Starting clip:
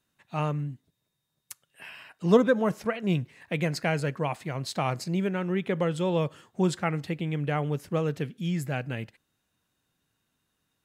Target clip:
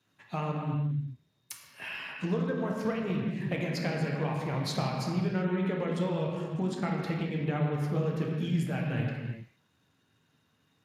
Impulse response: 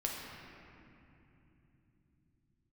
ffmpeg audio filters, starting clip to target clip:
-filter_complex "[0:a]acompressor=threshold=-34dB:ratio=16[a];[1:a]atrim=start_sample=2205,afade=t=out:st=0.45:d=0.01,atrim=end_sample=20286[b];[a][b]afir=irnorm=-1:irlink=0,volume=4.5dB" -ar 32000 -c:a libspeex -b:a 36k

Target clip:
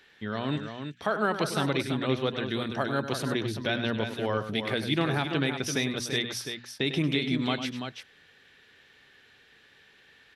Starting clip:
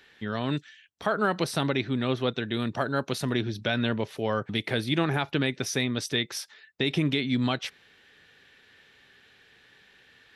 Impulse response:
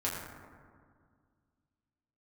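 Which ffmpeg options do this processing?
-af "bandreject=f=60:t=h:w=6,bandreject=f=120:t=h:w=6,bandreject=f=180:t=h:w=6,bandreject=f=240:t=h:w=6,aecho=1:1:100|336:0.299|0.422,volume=-1.5dB"

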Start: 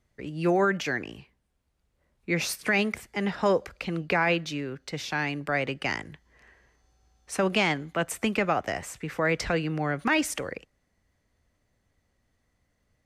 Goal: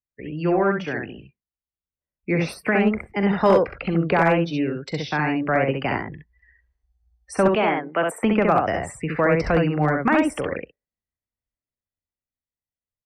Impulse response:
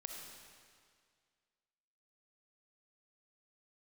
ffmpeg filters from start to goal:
-filter_complex "[0:a]asettb=1/sr,asplit=3[a][b][c];[a]atrim=end=7.484[d];[b]atrim=start=7.48:end=8.23,asetpts=PTS-STARTPTS,afade=t=in:d=0.004:c=qsin,afade=t=out:st=0.746:d=0.004:c=qsin,highpass=310[e];[c]atrim=start=8.226[f];[d][e]acrossfade=d=0.004:c1=hsin:c2=qsin[g];[g][f]acrossfade=d=0.004:c1=qsin:c2=hsin,acrossover=split=830|1500[h][i][j];[j]acompressor=threshold=-40dB:ratio=10[k];[h][i][k]amix=inputs=3:normalize=0,bandreject=f=6.6k:w=5,asplit=2[l][m];[m]asoftclip=type=tanh:threshold=-23.5dB,volume=-9.5dB[n];[l][n]amix=inputs=2:normalize=0,afftdn=nr=32:nf=-43,dynaudnorm=f=410:g=9:m=5dB,aecho=1:1:42|66:0.178|0.668,asoftclip=type=hard:threshold=-9.5dB"

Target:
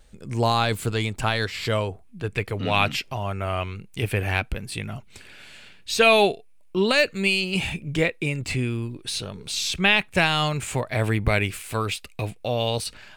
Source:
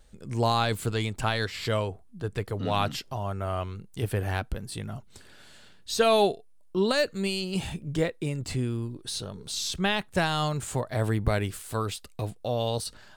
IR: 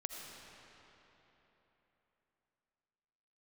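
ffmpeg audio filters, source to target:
-af "asetnsamples=n=441:p=0,asendcmd='2.03 equalizer g 13.5',equalizer=f=2.4k:t=o:w=0.58:g=3.5,volume=3dB"

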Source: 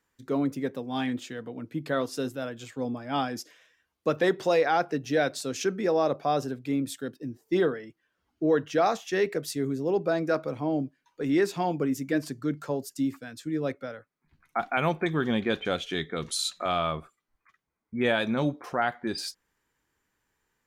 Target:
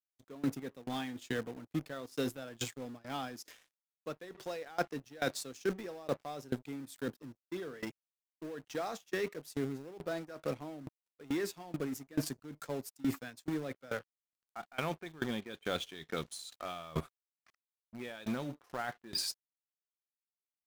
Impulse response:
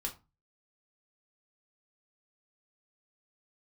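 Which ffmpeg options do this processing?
-filter_complex "[0:a]lowpass=f=3.7k:p=1,aemphasis=mode=production:type=75fm,areverse,acompressor=threshold=-37dB:ratio=10,areverse,aeval=exprs='sgn(val(0))*max(abs(val(0))-0.00133,0)':c=same,asplit=2[a][b];[b]acrusher=bits=6:mix=0:aa=0.000001,volume=-10dB[c];[a][c]amix=inputs=2:normalize=0,aeval=exprs='val(0)*pow(10,-22*if(lt(mod(2.3*n/s,1),2*abs(2.3)/1000),1-mod(2.3*n/s,1)/(2*abs(2.3)/1000),(mod(2.3*n/s,1)-2*abs(2.3)/1000)/(1-2*abs(2.3)/1000))/20)':c=same,volume=7.5dB"

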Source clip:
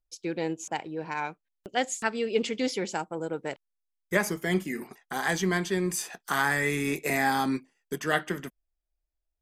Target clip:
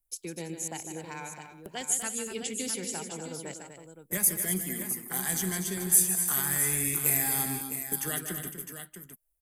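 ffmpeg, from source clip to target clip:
-filter_complex "[0:a]acrossover=split=170|3000[a][b][c];[b]acompressor=threshold=-42dB:ratio=3[d];[a][d][c]amix=inputs=3:normalize=0,highshelf=f=7.4k:t=q:w=1.5:g=14,aecho=1:1:151|245|329|659:0.335|0.355|0.15|0.335"

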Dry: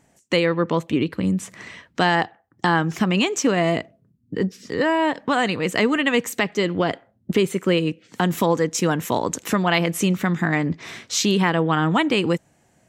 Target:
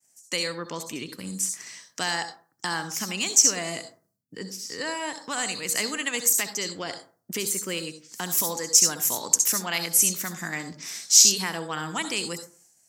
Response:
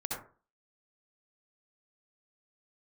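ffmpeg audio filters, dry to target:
-filter_complex "[0:a]highpass=110,agate=range=-33dB:threshold=-55dB:ratio=3:detection=peak,crystalizer=i=10:c=0,asplit=2[a][b];[b]highshelf=f=3.6k:t=q:w=3:g=12[c];[1:a]atrim=start_sample=2205[d];[c][d]afir=irnorm=-1:irlink=0,volume=-9.5dB[e];[a][e]amix=inputs=2:normalize=0,volume=-18dB"

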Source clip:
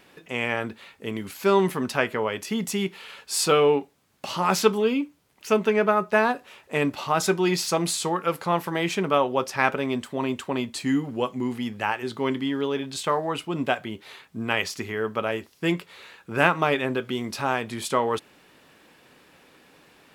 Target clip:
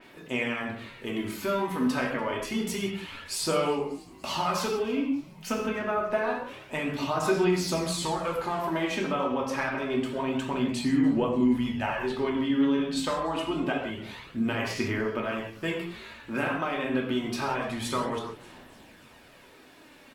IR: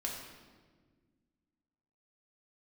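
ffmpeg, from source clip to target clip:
-filter_complex "[0:a]acompressor=threshold=-26dB:ratio=5[a];[1:a]atrim=start_sample=2205,afade=t=out:st=0.24:d=0.01,atrim=end_sample=11025[b];[a][b]afir=irnorm=-1:irlink=0,aphaser=in_gain=1:out_gain=1:delay=3.9:decay=0.37:speed=0.27:type=sinusoidal,asplit=5[c][d][e][f][g];[d]adelay=292,afreqshift=-110,volume=-23dB[h];[e]adelay=584,afreqshift=-220,volume=-27.4dB[i];[f]adelay=876,afreqshift=-330,volume=-31.9dB[j];[g]adelay=1168,afreqshift=-440,volume=-36.3dB[k];[c][h][i][j][k]amix=inputs=5:normalize=0,adynamicequalizer=threshold=0.00398:dfrequency=4100:dqfactor=0.7:tfrequency=4100:tqfactor=0.7:attack=5:release=100:ratio=0.375:range=2.5:mode=cutabove:tftype=highshelf"

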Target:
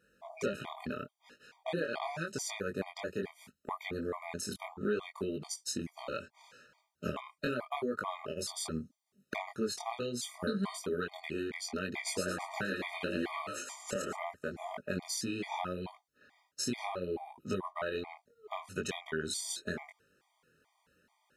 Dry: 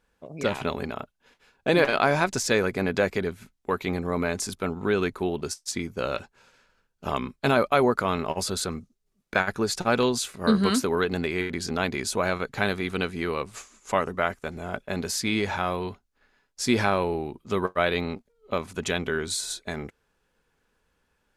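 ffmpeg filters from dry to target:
-filter_complex "[0:a]highpass=110,acompressor=threshold=-35dB:ratio=6,flanger=delay=20:depth=5.6:speed=0.75,asettb=1/sr,asplit=3[a][b][c];[a]atrim=end=11.844[d];[b]atrim=start=11.84:end=14.19,asetpts=PTS-STARTPTS,afade=t=in:d=0.004:c=qsin,afade=t=out:st=2.346:d=0.004:c=qsin,asplit=6[e][f][g][h][i][j];[f]adelay=112,afreqshift=150,volume=-3.5dB[k];[g]adelay=224,afreqshift=300,volume=-10.8dB[l];[h]adelay=336,afreqshift=450,volume=-18.2dB[m];[i]adelay=448,afreqshift=600,volume=-25.5dB[n];[j]adelay=560,afreqshift=750,volume=-32.8dB[o];[e][k][l][m][n][o]amix=inputs=6:normalize=0,atrim=end_sample=103635[p];[c]atrim=start=14.186[q];[d][p]acrossfade=d=0.004:c1=hsin:c2=qsin[r];[r][q]acrossfade=d=0.004:c1=qsin:c2=hsin,afftfilt=real='re*gt(sin(2*PI*2.3*pts/sr)*(1-2*mod(floor(b*sr/1024/620),2)),0)':imag='im*gt(sin(2*PI*2.3*pts/sr)*(1-2*mod(floor(b*sr/1024/620),2)),0)':win_size=1024:overlap=0.75,volume=7dB"

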